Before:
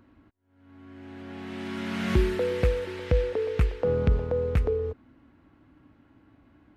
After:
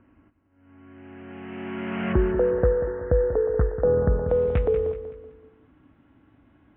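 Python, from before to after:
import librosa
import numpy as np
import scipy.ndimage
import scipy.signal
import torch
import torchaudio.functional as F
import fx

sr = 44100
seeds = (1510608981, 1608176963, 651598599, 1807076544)

y = fx.steep_lowpass(x, sr, hz=fx.steps((0.0, 3000.0), (2.12, 1800.0), (4.28, 3700.0)), slope=96)
y = fx.dynamic_eq(y, sr, hz=600.0, q=0.86, threshold_db=-40.0, ratio=4.0, max_db=6)
y = fx.echo_feedback(y, sr, ms=189, feedback_pct=39, wet_db=-11.0)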